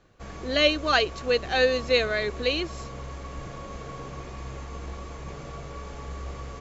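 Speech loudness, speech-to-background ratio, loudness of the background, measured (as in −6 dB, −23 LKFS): −24.0 LKFS, 15.0 dB, −39.0 LKFS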